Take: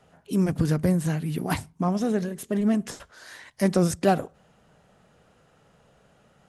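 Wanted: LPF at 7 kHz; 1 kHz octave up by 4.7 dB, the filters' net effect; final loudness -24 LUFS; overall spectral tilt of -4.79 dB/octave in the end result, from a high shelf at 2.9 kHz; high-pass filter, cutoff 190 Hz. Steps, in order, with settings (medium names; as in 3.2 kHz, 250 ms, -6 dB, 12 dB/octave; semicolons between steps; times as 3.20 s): high-pass 190 Hz; low-pass 7 kHz; peaking EQ 1 kHz +7.5 dB; treble shelf 2.9 kHz -4 dB; trim +2 dB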